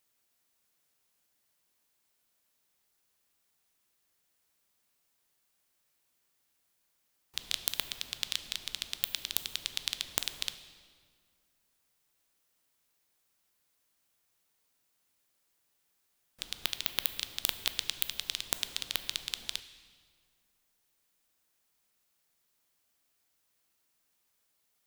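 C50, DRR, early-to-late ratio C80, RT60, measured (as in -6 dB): 12.0 dB, 10.5 dB, 13.0 dB, 1.9 s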